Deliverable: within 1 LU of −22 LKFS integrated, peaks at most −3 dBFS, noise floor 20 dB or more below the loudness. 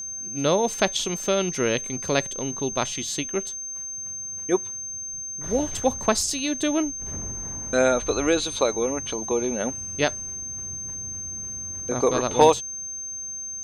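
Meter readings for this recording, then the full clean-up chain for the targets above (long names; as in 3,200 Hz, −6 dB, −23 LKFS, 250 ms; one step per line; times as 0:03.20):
interfering tone 6,300 Hz; level of the tone −31 dBFS; integrated loudness −25.0 LKFS; sample peak −5.0 dBFS; target loudness −22.0 LKFS
→ notch filter 6,300 Hz, Q 30
level +3 dB
brickwall limiter −3 dBFS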